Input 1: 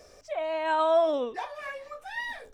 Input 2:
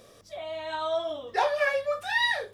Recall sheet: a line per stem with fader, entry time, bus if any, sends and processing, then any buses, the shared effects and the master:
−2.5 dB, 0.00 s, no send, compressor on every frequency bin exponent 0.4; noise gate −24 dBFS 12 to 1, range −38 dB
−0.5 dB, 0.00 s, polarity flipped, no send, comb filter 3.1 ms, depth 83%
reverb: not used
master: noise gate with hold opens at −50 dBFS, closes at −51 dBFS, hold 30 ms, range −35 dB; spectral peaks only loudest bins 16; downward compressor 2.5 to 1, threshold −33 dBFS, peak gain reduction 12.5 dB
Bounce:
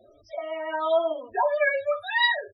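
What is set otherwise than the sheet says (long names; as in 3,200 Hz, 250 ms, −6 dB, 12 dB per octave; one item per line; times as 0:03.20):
stem 1 −2.5 dB → −12.5 dB
master: missing downward compressor 2.5 to 1, threshold −33 dBFS, peak gain reduction 12.5 dB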